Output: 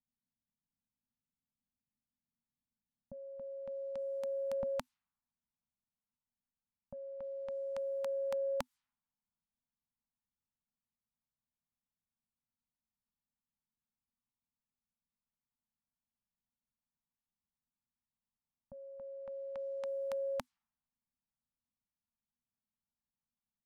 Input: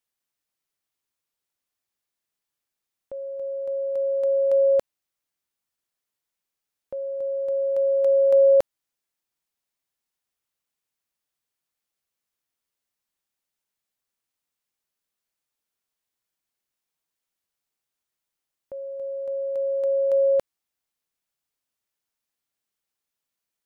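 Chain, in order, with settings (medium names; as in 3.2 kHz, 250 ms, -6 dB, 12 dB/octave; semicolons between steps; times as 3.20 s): peaking EQ 1 kHz -8 dB 2.8 oct, from 4.63 s 360 Hz; level-controlled noise filter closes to 490 Hz, open at -27 dBFS; compression 2.5:1, threshold -27 dBFS, peak gain reduction 4.5 dB; FFT filter 120 Hz 0 dB, 250 Hz +9 dB, 360 Hz -25 dB, 890 Hz +5 dB, 1.8 kHz +1 dB; trim +2.5 dB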